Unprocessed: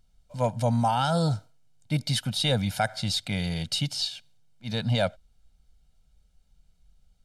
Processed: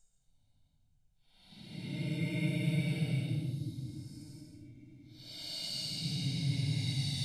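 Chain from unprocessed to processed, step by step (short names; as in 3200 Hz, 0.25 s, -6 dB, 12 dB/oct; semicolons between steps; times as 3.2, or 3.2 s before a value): notches 60/120/180/240/300 Hz; Paulstretch 23×, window 0.05 s, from 1.83; gain -9 dB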